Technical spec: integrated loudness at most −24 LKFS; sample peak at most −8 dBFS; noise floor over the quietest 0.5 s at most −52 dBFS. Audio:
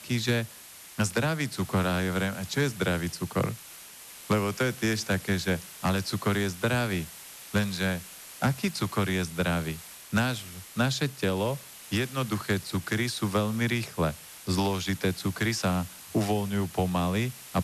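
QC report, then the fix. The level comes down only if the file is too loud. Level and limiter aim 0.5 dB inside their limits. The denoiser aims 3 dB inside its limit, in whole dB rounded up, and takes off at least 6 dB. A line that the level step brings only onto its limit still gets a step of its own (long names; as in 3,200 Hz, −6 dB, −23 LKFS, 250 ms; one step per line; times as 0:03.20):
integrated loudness −29.0 LKFS: in spec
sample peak −13.5 dBFS: in spec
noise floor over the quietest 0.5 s −48 dBFS: out of spec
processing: broadband denoise 7 dB, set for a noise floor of −48 dBFS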